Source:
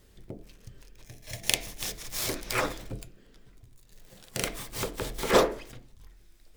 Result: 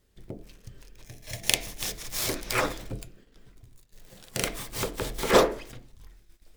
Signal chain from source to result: gate -54 dBFS, range -11 dB; gain +2 dB

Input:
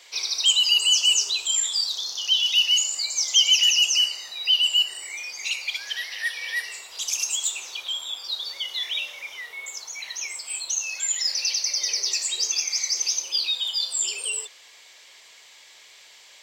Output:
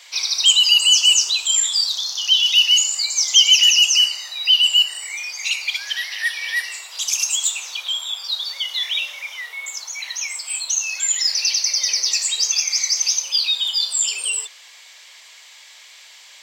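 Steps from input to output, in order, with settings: HPF 730 Hz 12 dB/oct; gain +5.5 dB

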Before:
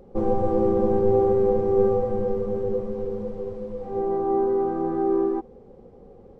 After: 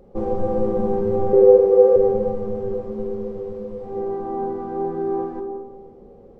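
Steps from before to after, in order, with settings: 1.33–1.96 resonant high-pass 470 Hz, resonance Q 4.9; digital reverb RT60 1.4 s, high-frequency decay 0.25×, pre-delay 5 ms, DRR 5 dB; gain -1 dB

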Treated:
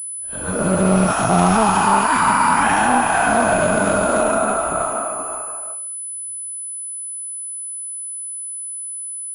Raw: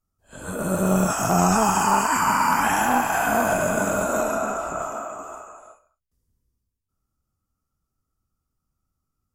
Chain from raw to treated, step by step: in parallel at +2.5 dB: limiter -16.5 dBFS, peak gain reduction 8 dB; on the sum: pulse-width modulation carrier 10000 Hz

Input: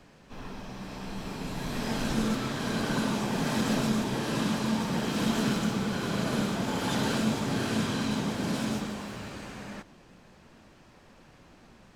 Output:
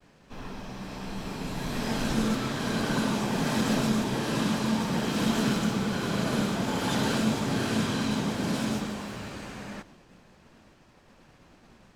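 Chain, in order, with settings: expander -51 dBFS; gain +1.5 dB

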